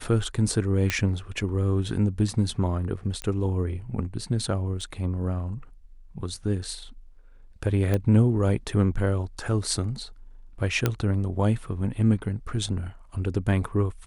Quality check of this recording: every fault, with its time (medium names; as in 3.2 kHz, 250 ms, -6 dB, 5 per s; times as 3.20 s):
0.90 s: pop -9 dBFS
3.22 s: pop -17 dBFS
4.81 s: dropout 3.8 ms
7.94 s: pop -13 dBFS
10.86 s: pop -8 dBFS